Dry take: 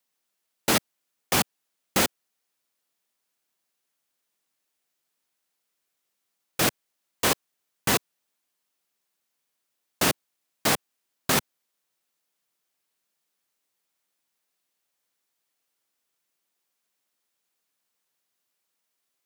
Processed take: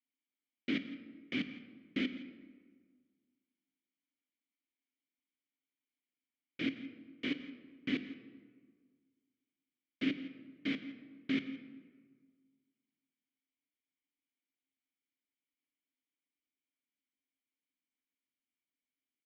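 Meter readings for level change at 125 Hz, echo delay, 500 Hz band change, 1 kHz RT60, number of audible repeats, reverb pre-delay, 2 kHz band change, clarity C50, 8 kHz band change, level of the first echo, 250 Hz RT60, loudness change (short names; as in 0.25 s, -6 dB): -16.0 dB, 0.168 s, -18.0 dB, 1.6 s, 1, 21 ms, -12.5 dB, 11.0 dB, under -40 dB, -18.5 dB, 1.9 s, -14.0 dB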